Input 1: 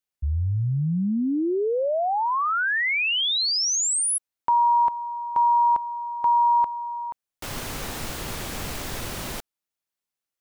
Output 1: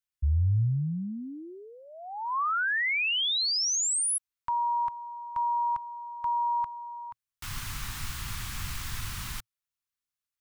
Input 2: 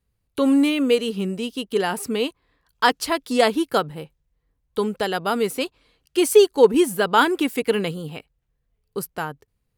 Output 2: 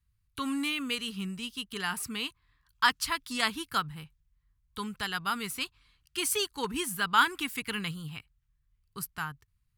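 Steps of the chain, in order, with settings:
drawn EQ curve 110 Hz 0 dB, 550 Hz −27 dB, 1,100 Hz −4 dB

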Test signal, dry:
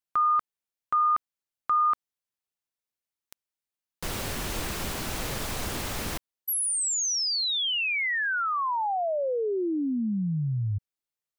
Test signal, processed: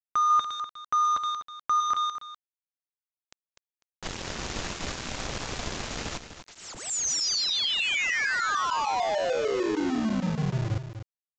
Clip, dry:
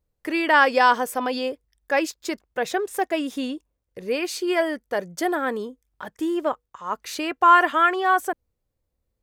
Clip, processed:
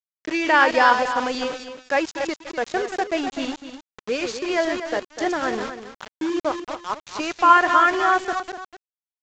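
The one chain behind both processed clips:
delay that plays each chunk backwards 150 ms, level −7 dB
centre clipping without the shift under −28.5 dBFS
single-tap delay 248 ms −10.5 dB
mu-law 128 kbit/s 16,000 Hz

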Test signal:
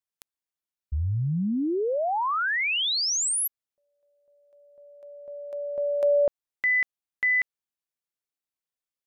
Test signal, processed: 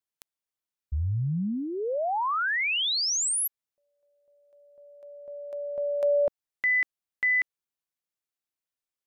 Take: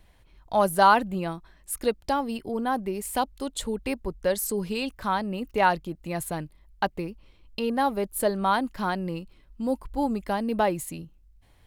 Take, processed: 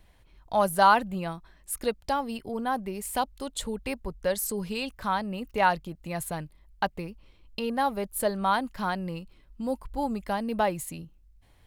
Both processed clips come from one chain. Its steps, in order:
dynamic equaliser 330 Hz, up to −6 dB, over −42 dBFS, Q 1.8
level −1 dB

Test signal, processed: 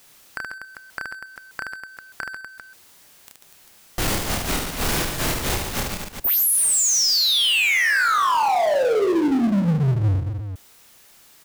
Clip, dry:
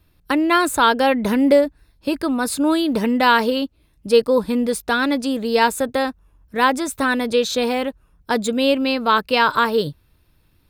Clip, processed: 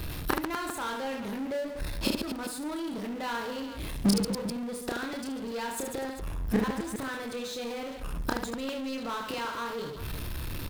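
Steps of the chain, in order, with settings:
gate with flip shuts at −18 dBFS, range −40 dB
reverse bouncing-ball delay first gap 30 ms, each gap 1.5×, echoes 5
power curve on the samples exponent 0.5

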